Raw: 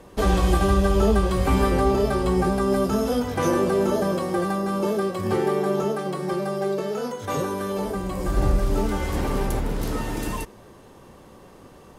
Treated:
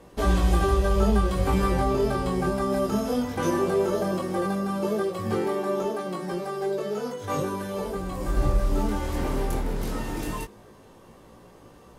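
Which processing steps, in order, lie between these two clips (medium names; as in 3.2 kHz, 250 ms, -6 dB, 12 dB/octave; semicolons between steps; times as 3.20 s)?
chorus 0.17 Hz, delay 17 ms, depth 7 ms; AAC 96 kbps 44.1 kHz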